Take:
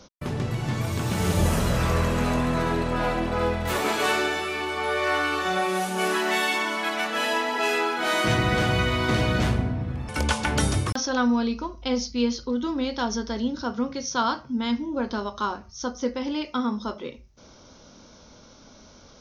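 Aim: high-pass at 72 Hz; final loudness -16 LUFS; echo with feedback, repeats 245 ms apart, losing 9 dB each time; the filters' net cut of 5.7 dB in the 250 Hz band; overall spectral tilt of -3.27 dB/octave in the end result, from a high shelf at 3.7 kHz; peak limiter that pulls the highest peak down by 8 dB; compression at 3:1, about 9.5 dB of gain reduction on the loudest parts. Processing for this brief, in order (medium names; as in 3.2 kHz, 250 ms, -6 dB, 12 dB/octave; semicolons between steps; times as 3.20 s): high-pass 72 Hz; peaking EQ 250 Hz -7 dB; treble shelf 3.7 kHz +8.5 dB; compression 3:1, threshold -31 dBFS; peak limiter -23.5 dBFS; feedback delay 245 ms, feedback 35%, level -9 dB; trim +16.5 dB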